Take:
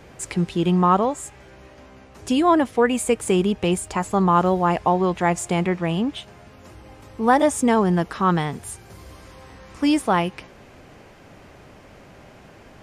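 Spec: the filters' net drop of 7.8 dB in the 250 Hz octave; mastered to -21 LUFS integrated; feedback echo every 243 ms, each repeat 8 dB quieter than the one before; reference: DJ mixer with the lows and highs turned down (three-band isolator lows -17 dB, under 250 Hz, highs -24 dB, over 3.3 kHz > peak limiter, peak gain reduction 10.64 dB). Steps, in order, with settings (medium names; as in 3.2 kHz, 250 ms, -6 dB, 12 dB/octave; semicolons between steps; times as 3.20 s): three-band isolator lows -17 dB, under 250 Hz, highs -24 dB, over 3.3 kHz; peaking EQ 250 Hz -4.5 dB; feedback delay 243 ms, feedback 40%, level -8 dB; trim +6.5 dB; peak limiter -9.5 dBFS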